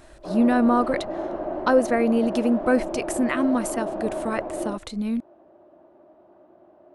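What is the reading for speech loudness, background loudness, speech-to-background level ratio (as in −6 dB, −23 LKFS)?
−24.0 LKFS, −30.5 LKFS, 6.5 dB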